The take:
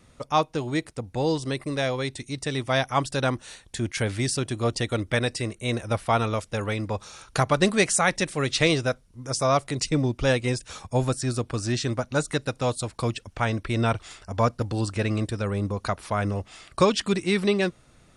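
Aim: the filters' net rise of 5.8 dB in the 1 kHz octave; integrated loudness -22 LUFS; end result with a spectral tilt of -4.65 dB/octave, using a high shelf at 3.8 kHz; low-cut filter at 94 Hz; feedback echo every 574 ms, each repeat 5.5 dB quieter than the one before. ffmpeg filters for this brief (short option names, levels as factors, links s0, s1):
-af "highpass=94,equalizer=f=1000:t=o:g=8,highshelf=f=3800:g=-6.5,aecho=1:1:574|1148|1722|2296|2870|3444|4018:0.531|0.281|0.149|0.079|0.0419|0.0222|0.0118,volume=1.19"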